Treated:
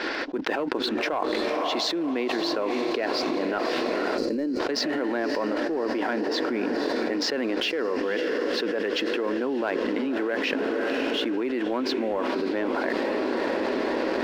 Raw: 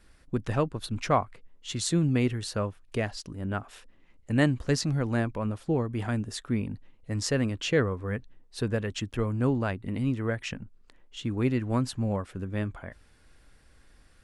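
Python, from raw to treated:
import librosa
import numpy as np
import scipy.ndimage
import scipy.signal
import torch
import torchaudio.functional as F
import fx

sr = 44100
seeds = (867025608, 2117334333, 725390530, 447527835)

y = scipy.signal.sosfilt(scipy.signal.ellip(3, 1.0, 40, [310.0, 5000.0], 'bandpass', fs=sr, output='sos'), x)
y = fx.high_shelf(y, sr, hz=3900.0, db=-9.5)
y = fx.echo_diffused(y, sr, ms=533, feedback_pct=67, wet_db=-13.0)
y = fx.rider(y, sr, range_db=5, speed_s=0.5)
y = fx.notch(y, sr, hz=1200.0, q=7.5)
y = fx.leveller(y, sr, passes=1)
y = fx.spec_box(y, sr, start_s=4.17, length_s=0.42, low_hz=590.0, high_hz=3900.0, gain_db=-14)
y = fx.env_flatten(y, sr, amount_pct=100)
y = F.gain(torch.from_numpy(y), -3.5).numpy()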